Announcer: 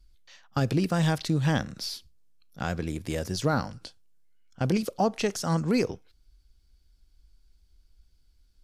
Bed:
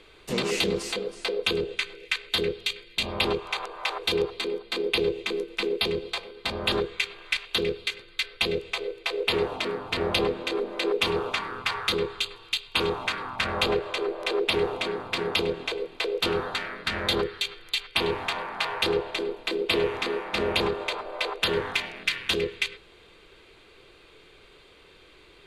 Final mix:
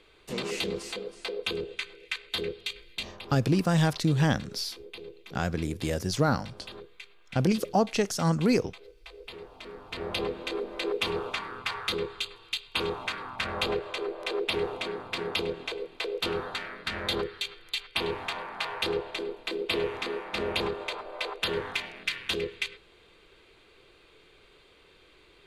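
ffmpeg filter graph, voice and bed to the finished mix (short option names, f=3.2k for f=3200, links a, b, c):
-filter_complex "[0:a]adelay=2750,volume=1dB[a];[1:a]volume=8.5dB,afade=t=out:st=2.94:d=0.25:silence=0.223872,afade=t=in:st=9.52:d=0.92:silence=0.188365[b];[a][b]amix=inputs=2:normalize=0"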